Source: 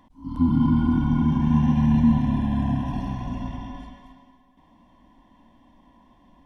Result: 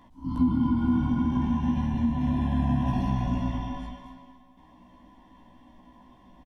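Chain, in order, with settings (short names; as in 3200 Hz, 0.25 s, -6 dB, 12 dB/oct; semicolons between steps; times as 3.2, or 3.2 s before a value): compressor 10:1, threshold -22 dBFS, peak gain reduction 10 dB; doubler 16 ms -2.5 dB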